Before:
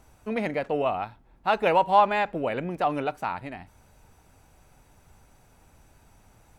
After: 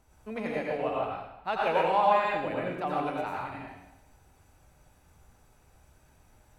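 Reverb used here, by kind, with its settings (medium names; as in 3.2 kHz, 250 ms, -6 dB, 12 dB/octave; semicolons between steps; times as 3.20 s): plate-style reverb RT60 0.85 s, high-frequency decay 0.95×, pre-delay 75 ms, DRR -3.5 dB; trim -8.5 dB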